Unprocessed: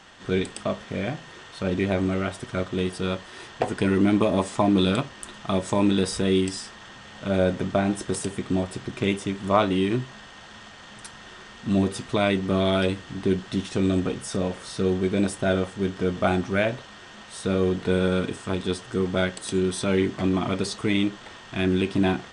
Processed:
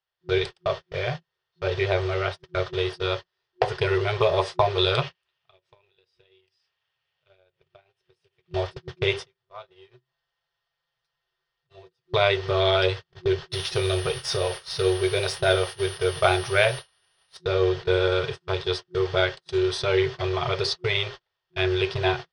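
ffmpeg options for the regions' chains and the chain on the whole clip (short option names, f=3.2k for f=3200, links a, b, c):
-filter_complex "[0:a]asettb=1/sr,asplit=3[a][b][c];[a]atrim=end=5.024[d];[b]atrim=start=5.02:end=8.54,asetpts=PTS-STARTPTS,afade=t=in:d=0.004:c=qsin,afade=t=out:st=3.516:d=0.004:c=qsin,highpass=51,equalizer=f=2.6k:w=1.8:g=9,acompressor=threshold=-31dB:ratio=10:attack=3.2:release=140:knee=1:detection=peak[e];[c]atrim=start=8.536[f];[d][e]acrossfade=d=0.004:c1=hsin:c2=qsin[g];[g][f]acrossfade=d=0.004:c1=qsin:c2=hsin,asettb=1/sr,asplit=3[h][i][j];[h]atrim=end=9.234[k];[i]atrim=start=9.23:end=12.13,asetpts=PTS-STARTPTS,afade=t=in:d=0.004:c=qsin,afade=t=out:st=2.896:d=0.004:c=qsin,aecho=1:1:5.9:0.52,atrim=end_sample=127890,acompressor=threshold=-37dB:ratio=2.5:attack=3.2:release=140:knee=1:detection=peak[l];[j]atrim=start=12.126[m];[k][l]acrossfade=d=0.004:c1=hsin:c2=qsin[n];[n][m]acrossfade=d=0.004:c1=qsin:c2=hsin,asettb=1/sr,asplit=3[o][p][q];[o]atrim=end=13.504[r];[p]atrim=start=13.5:end=17.37,asetpts=PTS-STARTPTS,afade=t=in:d=0.004:c=qsin,afade=t=out:st=3.866:d=0.004:c=qsin,highshelf=f=3k:g=8,aeval=exprs='val(0)+0.0447*sin(2*PI*9400*n/s)':c=same,adynamicsmooth=sensitivity=6:basefreq=6.6k[s];[q]atrim=start=17.366[t];[r][s]acrossfade=d=0.004:c1=hsin:c2=qsin[u];[u][t]acrossfade=d=0.004:c1=qsin:c2=hsin,agate=range=-42dB:threshold=-30dB:ratio=16:detection=peak,afftfilt=real='re*(1-between(b*sr/4096,170,360))':imag='im*(1-between(b*sr/4096,170,360))':win_size=4096:overlap=0.75,highshelf=f=6.2k:t=q:w=3:g=-8,volume=2.5dB"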